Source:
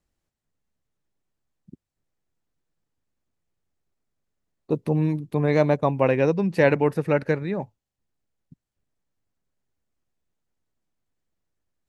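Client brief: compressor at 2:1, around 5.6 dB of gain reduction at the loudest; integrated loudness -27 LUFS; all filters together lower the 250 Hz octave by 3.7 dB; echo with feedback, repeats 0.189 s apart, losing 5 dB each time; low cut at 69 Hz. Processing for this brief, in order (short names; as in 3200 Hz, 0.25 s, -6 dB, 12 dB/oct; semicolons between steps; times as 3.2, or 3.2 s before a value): HPF 69 Hz; bell 250 Hz -5.5 dB; compressor 2:1, threshold -25 dBFS; feedback echo 0.189 s, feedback 56%, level -5 dB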